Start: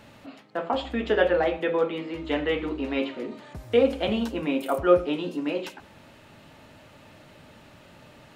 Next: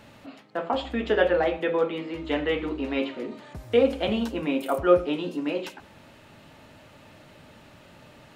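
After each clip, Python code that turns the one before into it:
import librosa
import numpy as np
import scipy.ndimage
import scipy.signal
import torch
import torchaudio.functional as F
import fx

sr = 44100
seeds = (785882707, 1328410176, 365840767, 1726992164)

y = x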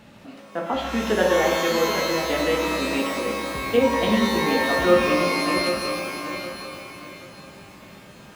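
y = fx.peak_eq(x, sr, hz=190.0, db=12.0, octaves=0.24)
y = fx.echo_feedback(y, sr, ms=773, feedback_pct=30, wet_db=-9.0)
y = fx.rev_shimmer(y, sr, seeds[0], rt60_s=1.7, semitones=12, shimmer_db=-2, drr_db=3.5)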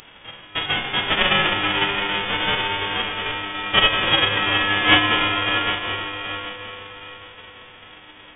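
y = fx.envelope_flatten(x, sr, power=0.1)
y = fx.freq_invert(y, sr, carrier_hz=3500)
y = y * 10.0 ** (7.0 / 20.0)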